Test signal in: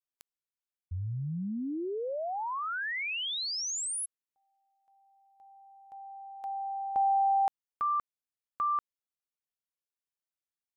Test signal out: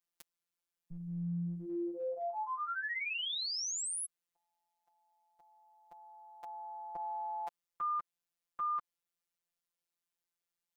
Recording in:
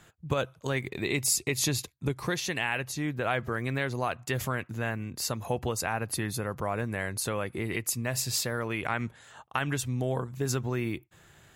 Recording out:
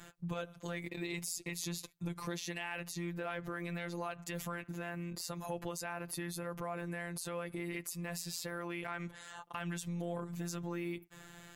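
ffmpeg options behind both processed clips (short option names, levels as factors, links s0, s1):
-af "afftfilt=real='hypot(re,im)*cos(PI*b)':imag='0':win_size=1024:overlap=0.75,acompressor=threshold=0.00708:ratio=2.5:attack=0.42:release=121:knee=1:detection=peak,volume=2"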